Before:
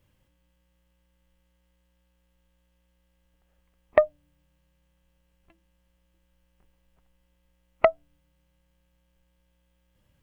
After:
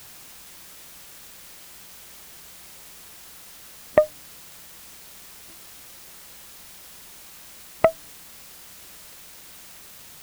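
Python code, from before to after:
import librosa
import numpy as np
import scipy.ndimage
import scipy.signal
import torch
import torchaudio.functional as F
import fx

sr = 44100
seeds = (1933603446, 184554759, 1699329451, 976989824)

p1 = fx.peak_eq(x, sr, hz=170.0, db=11.5, octaves=2.6)
p2 = fx.quant_dither(p1, sr, seeds[0], bits=6, dither='triangular')
p3 = p1 + (p2 * 10.0 ** (-3.0 / 20.0))
y = p3 * 10.0 ** (-6.0 / 20.0)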